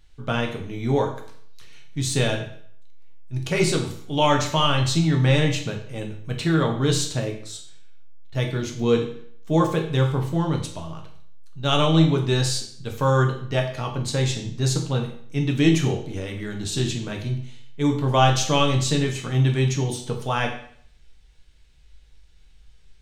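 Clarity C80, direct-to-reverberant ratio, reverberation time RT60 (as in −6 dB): 11.0 dB, 1.5 dB, 0.60 s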